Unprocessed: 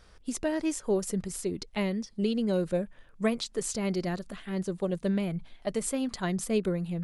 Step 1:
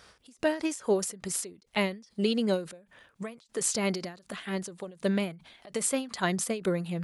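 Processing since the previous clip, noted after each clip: HPF 79 Hz 12 dB/oct; low shelf 440 Hz -8.5 dB; ending taper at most 150 dB/s; gain +7 dB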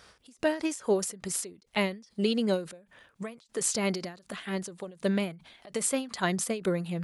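nothing audible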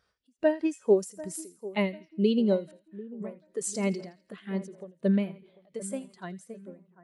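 ending faded out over 1.88 s; split-band echo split 1800 Hz, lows 0.744 s, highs 83 ms, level -11.5 dB; spectral expander 1.5:1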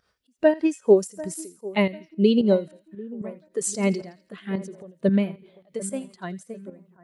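pump 112 bpm, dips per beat 2, -10 dB, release 0.122 s; gain +6 dB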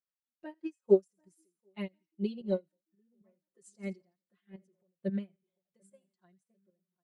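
comb 5.6 ms, depth 99%; upward expander 2.5:1, over -26 dBFS; gain -9 dB

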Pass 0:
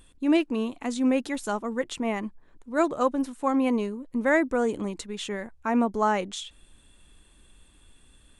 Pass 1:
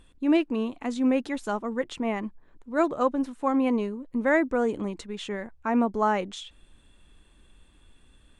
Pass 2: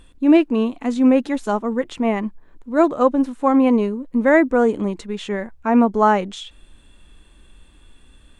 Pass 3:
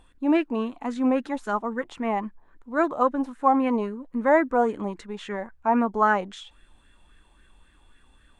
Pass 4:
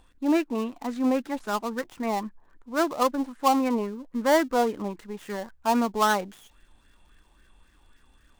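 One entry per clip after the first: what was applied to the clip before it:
high shelf 6200 Hz -12 dB
harmonic-percussive split percussive -6 dB; gain +9 dB
LFO bell 3.7 Hz 770–1800 Hz +13 dB; gain -9 dB
switching dead time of 0.12 ms; gain -1.5 dB

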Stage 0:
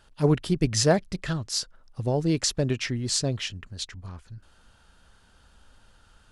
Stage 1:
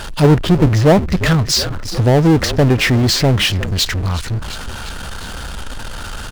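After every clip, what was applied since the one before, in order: treble ducked by the level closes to 870 Hz, closed at -18.5 dBFS; frequency-shifting echo 0.355 s, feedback 52%, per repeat -39 Hz, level -21 dB; power-law curve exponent 0.5; gain +7.5 dB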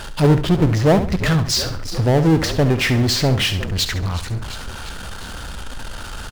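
feedback echo 68 ms, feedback 32%, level -11 dB; gain -4 dB

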